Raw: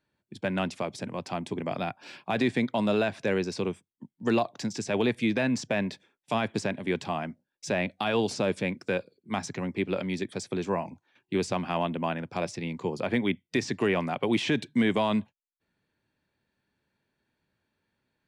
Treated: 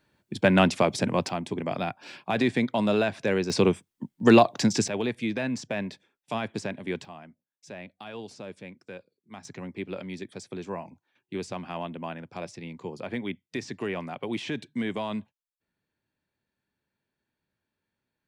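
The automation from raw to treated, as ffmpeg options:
-af "asetnsamples=n=441:p=0,asendcmd='1.29 volume volume 1.5dB;3.5 volume volume 9dB;4.88 volume volume -3dB;7.05 volume volume -13.5dB;9.45 volume volume -6dB',volume=9.5dB"

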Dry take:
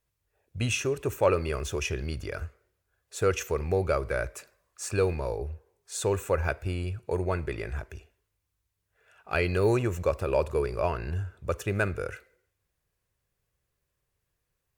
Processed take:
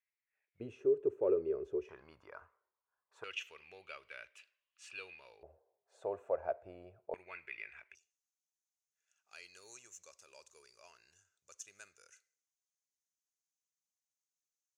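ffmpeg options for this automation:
-af "asetnsamples=n=441:p=0,asendcmd='0.6 bandpass f 400;1.89 bandpass f 1000;3.24 bandpass f 2900;5.43 bandpass f 650;7.14 bandpass f 2300;7.95 bandpass f 6400',bandpass=f=2.1k:t=q:w=5.3:csg=0"

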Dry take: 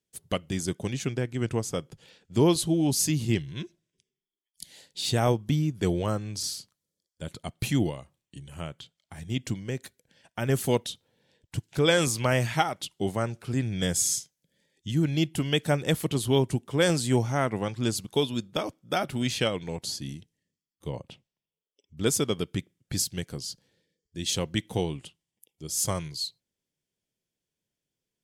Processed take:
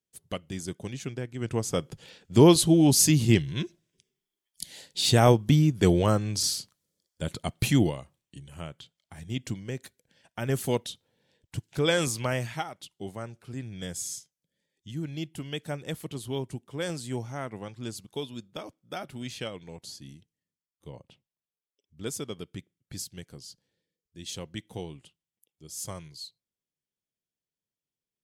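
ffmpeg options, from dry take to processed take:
-af "volume=5dB,afade=t=in:st=1.38:d=0.54:silence=0.298538,afade=t=out:st=7.37:d=1.11:silence=0.421697,afade=t=out:st=12.11:d=0.54:silence=0.446684"

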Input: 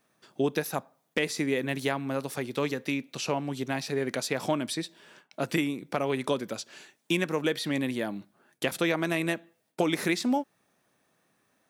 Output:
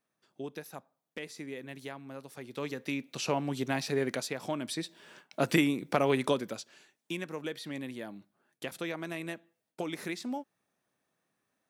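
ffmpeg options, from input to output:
-af "volume=10.5dB,afade=t=in:st=2.34:d=1.07:silence=0.223872,afade=t=out:st=4.02:d=0.38:silence=0.375837,afade=t=in:st=4.4:d=1.01:silence=0.281838,afade=t=out:st=6.11:d=0.65:silence=0.251189"

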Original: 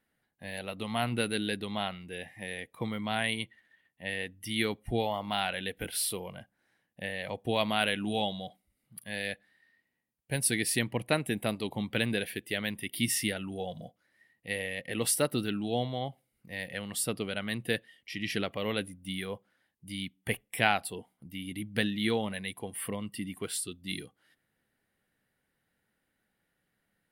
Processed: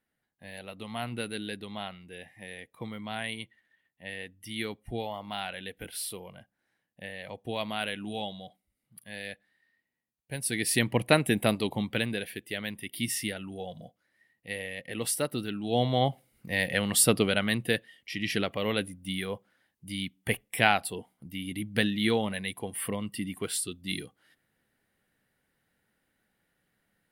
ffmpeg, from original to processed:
-af "volume=18dB,afade=t=in:st=10.44:d=0.52:silence=0.298538,afade=t=out:st=11.52:d=0.59:silence=0.398107,afade=t=in:st=15.62:d=0.41:silence=0.251189,afade=t=out:st=17.18:d=0.54:silence=0.446684"

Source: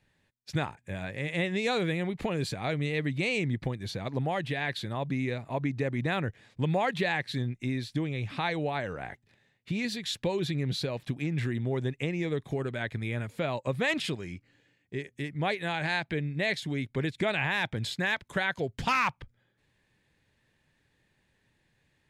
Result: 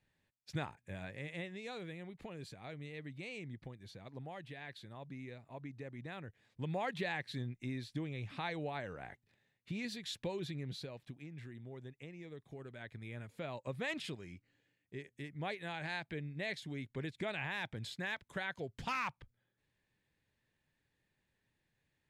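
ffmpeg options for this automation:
-af "volume=6.5dB,afade=t=out:st=1.04:d=0.51:silence=0.398107,afade=t=in:st=6.28:d=0.6:silence=0.421697,afade=t=out:st=10.18:d=1.12:silence=0.334965,afade=t=in:st=12.4:d=1.32:silence=0.398107"

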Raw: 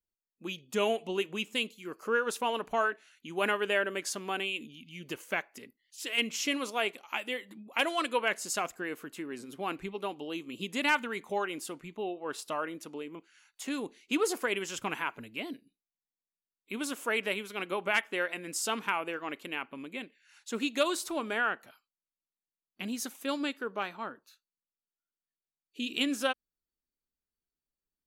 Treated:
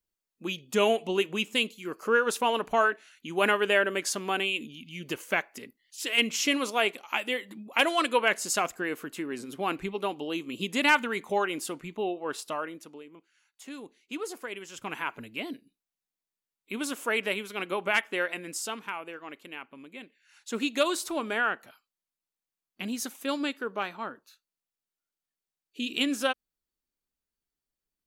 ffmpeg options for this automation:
-af "volume=22dB,afade=t=out:st=12.1:d=0.94:silence=0.251189,afade=t=in:st=14.71:d=0.44:silence=0.334965,afade=t=out:st=18.35:d=0.43:silence=0.421697,afade=t=in:st=19.95:d=0.61:silence=0.421697"

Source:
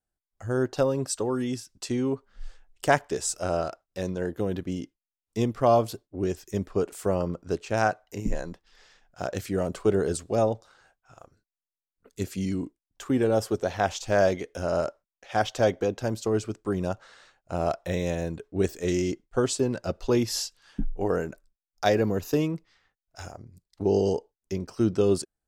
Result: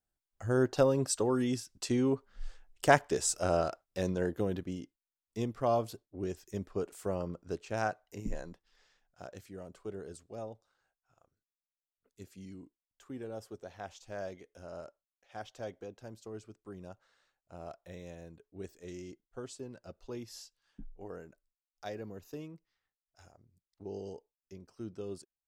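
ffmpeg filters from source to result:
-af "volume=-2dB,afade=t=out:st=4.2:d=0.61:silence=0.446684,afade=t=out:st=8.38:d=1.12:silence=0.316228"

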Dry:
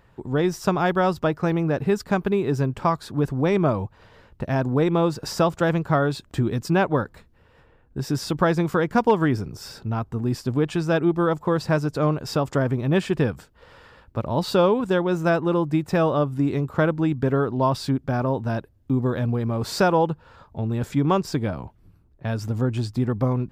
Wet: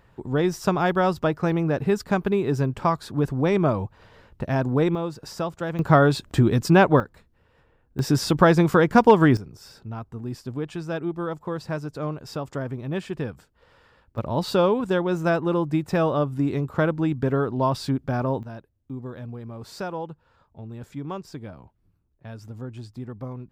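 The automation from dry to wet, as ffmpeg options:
-af "asetnsamples=n=441:p=0,asendcmd='4.95 volume volume -8dB;5.79 volume volume 4.5dB;7 volume volume -5.5dB;7.99 volume volume 4dB;9.37 volume volume -8dB;14.18 volume volume -1.5dB;18.43 volume volume -12.5dB',volume=-0.5dB"

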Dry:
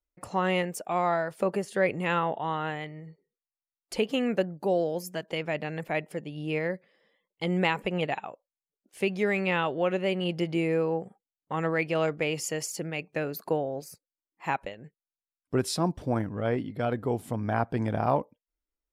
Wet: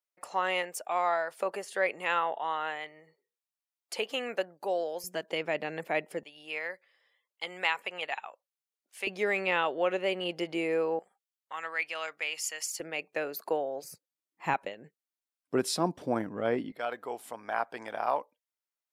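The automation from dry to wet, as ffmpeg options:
-af "asetnsamples=n=441:p=0,asendcmd='5.04 highpass f 290;6.23 highpass f 950;9.07 highpass f 400;10.99 highpass f 1300;12.8 highpass f 440;13.84 highpass f 110;14.54 highpass f 240;16.72 highpass f 730',highpass=620"

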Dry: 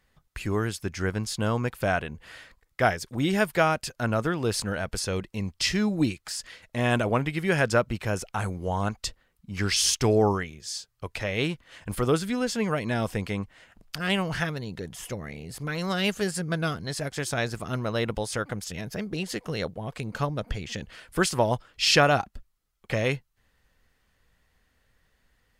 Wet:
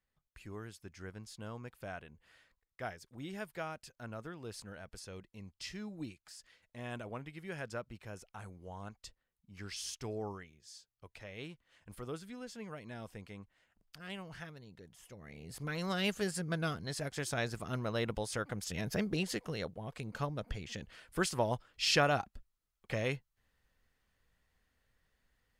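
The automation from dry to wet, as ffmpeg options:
-af "volume=-1dB,afade=t=in:st=15.14:d=0.43:silence=0.266073,afade=t=in:st=18.53:d=0.43:silence=0.473151,afade=t=out:st=18.96:d=0.61:silence=0.398107"

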